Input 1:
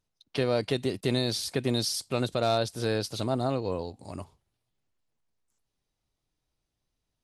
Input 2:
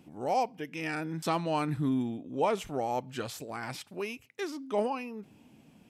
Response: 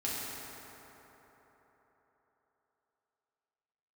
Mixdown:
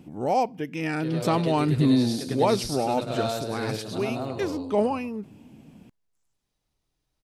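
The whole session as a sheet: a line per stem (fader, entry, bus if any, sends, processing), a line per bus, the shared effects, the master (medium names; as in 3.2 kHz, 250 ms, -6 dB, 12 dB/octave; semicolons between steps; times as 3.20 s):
-7.0 dB, 0.65 s, no send, echo send -6.5 dB, level rider gain up to 9 dB; auto duck -12 dB, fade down 1.45 s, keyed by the second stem
+2.5 dB, 0.00 s, no send, no echo send, bass shelf 490 Hz +8 dB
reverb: none
echo: feedback delay 101 ms, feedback 43%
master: none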